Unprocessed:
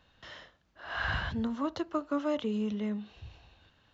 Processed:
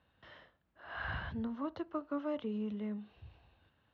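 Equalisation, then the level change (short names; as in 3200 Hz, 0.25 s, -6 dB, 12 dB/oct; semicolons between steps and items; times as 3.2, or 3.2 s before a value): HPF 51 Hz; air absorption 220 m; high shelf 5200 Hz -5.5 dB; -5.5 dB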